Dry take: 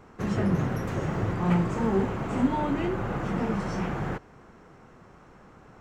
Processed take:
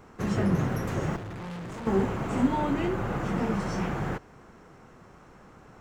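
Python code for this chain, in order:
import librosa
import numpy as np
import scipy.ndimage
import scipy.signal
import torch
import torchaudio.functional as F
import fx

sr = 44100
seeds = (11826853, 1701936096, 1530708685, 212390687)

y = fx.high_shelf(x, sr, hz=6300.0, db=6.0)
y = fx.tube_stage(y, sr, drive_db=36.0, bias=0.65, at=(1.16, 1.87))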